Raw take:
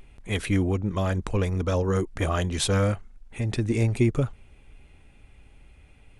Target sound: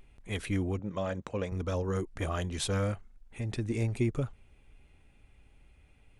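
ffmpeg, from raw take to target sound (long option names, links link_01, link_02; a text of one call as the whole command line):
ffmpeg -i in.wav -filter_complex "[0:a]asettb=1/sr,asplit=3[link_01][link_02][link_03];[link_01]atrim=end=0.794[link_04];[link_02]atrim=start=0.79:end=1.52,asetpts=PTS-STARTPTS,afade=type=in:duration=0.004:curve=qsin,afade=type=out:start_time=0.726:duration=0.004:curve=qsin,highpass=130,equalizer=frequency=370:width_type=q:width=4:gain=-4,equalizer=frequency=550:width_type=q:width=4:gain=7,equalizer=frequency=4800:width_type=q:width=4:gain=-5,lowpass=frequency=7500:width=0.5412,lowpass=frequency=7500:width=1.3066[link_05];[link_03]atrim=start=1.516[link_06];[link_04][link_05]acrossfade=duration=0.004:curve1=hsin:curve2=qsin[link_07];[link_07][link_06]acrossfade=duration=0.004:curve1=qsin:curve2=hsin,volume=-7.5dB" out.wav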